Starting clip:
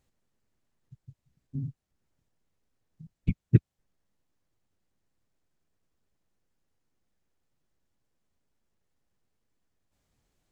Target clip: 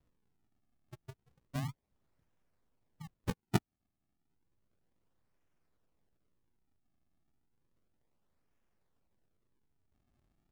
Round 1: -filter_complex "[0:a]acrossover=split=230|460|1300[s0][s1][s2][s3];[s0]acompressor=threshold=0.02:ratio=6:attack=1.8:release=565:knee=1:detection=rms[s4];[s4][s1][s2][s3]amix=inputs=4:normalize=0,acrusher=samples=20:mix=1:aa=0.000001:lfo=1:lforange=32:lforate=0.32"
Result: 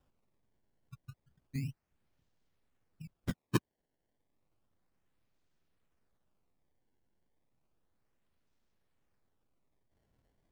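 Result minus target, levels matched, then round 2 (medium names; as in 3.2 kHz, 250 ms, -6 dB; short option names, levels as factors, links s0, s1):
decimation with a swept rate: distortion -13 dB
-filter_complex "[0:a]acrossover=split=230|460|1300[s0][s1][s2][s3];[s0]acompressor=threshold=0.02:ratio=6:attack=1.8:release=565:knee=1:detection=rms[s4];[s4][s1][s2][s3]amix=inputs=4:normalize=0,acrusher=samples=51:mix=1:aa=0.000001:lfo=1:lforange=81.6:lforate=0.32"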